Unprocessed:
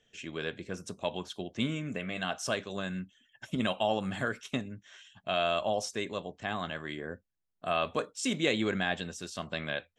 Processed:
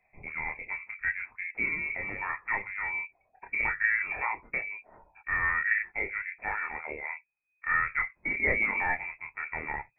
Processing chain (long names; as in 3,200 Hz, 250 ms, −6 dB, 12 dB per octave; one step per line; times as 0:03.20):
voice inversion scrambler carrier 2,500 Hz
multi-voice chorus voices 4, 0.22 Hz, delay 27 ms, depth 1.3 ms
level +5 dB